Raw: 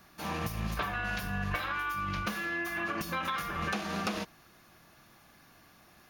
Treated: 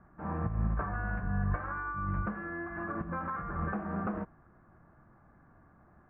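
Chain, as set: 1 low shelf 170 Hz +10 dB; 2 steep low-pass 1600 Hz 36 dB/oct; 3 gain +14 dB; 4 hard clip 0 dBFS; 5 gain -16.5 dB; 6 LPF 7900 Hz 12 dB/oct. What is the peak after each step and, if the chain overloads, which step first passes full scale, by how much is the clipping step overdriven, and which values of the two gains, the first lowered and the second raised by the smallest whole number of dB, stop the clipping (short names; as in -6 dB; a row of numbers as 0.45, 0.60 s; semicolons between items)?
-16.5, -17.0, -3.0, -3.0, -19.5, -19.5 dBFS; no overload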